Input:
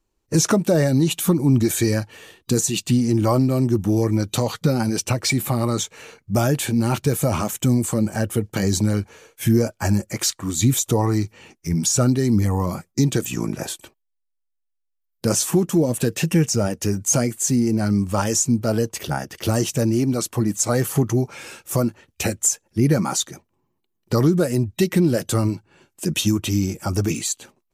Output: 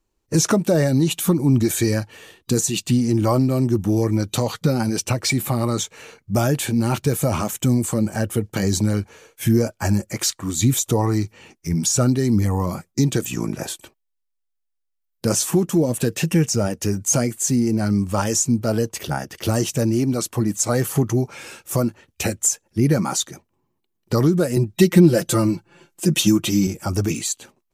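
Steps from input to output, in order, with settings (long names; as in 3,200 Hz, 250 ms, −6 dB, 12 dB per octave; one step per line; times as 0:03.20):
0:24.56–0:26.67: comb filter 5.8 ms, depth 100%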